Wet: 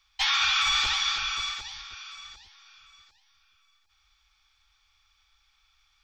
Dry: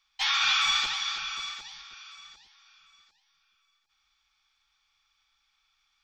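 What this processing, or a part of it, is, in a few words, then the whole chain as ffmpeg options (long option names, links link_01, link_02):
car stereo with a boomy subwoofer: -af "lowshelf=frequency=120:width_type=q:width=1.5:gain=9.5,alimiter=limit=-20.5dB:level=0:latency=1:release=14,volume=4.5dB"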